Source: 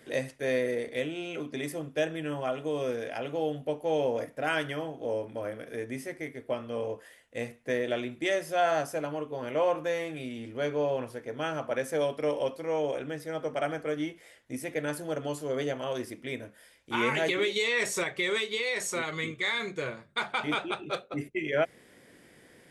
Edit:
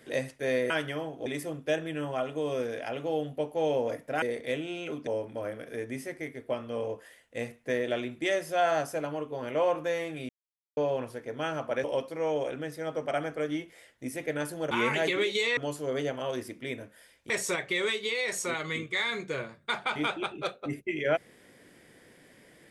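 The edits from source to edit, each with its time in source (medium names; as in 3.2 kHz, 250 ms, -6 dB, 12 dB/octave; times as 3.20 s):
0.70–1.55 s: swap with 4.51–5.07 s
10.29–10.77 s: mute
11.84–12.32 s: delete
16.92–17.78 s: move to 15.19 s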